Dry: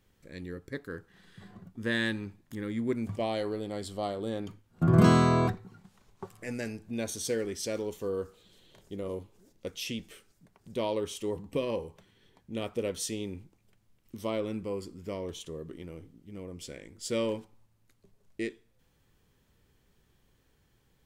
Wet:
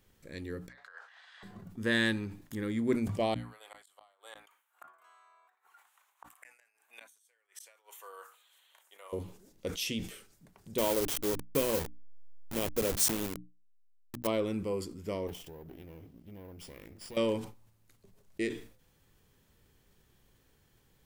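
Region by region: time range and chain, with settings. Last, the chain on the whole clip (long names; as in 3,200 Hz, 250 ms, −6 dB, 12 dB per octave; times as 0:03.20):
0:00.68–0:01.43: Butterworth high-pass 640 Hz 48 dB per octave + compressor whose output falls as the input rises −50 dBFS, ratio −0.5 + high-frequency loss of the air 130 metres
0:03.34–0:09.13: high-pass filter 880 Hz 24 dB per octave + parametric band 4,900 Hz −13.5 dB 0.87 octaves + gate with flip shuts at −37 dBFS, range −32 dB
0:10.78–0:14.27: hold until the input has moved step −34 dBFS + high-shelf EQ 8,000 Hz +9 dB
0:15.27–0:17.17: lower of the sound and its delayed copy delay 0.39 ms + downward compressor 4 to 1, threshold −46 dBFS + bad sample-rate conversion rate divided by 3×, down filtered, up hold
whole clip: high-shelf EQ 8,400 Hz +5.5 dB; mains-hum notches 60/120/180/240/300 Hz; level that may fall only so fast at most 110 dB per second; level +1 dB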